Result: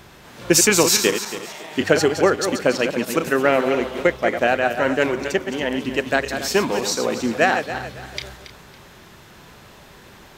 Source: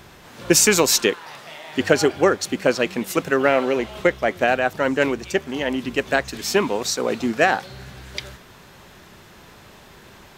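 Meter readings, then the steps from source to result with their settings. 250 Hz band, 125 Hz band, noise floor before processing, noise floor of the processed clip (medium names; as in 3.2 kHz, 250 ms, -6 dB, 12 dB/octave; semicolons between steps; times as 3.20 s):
+1.0 dB, +1.0 dB, -47 dBFS, -46 dBFS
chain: backward echo that repeats 139 ms, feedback 55%, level -8 dB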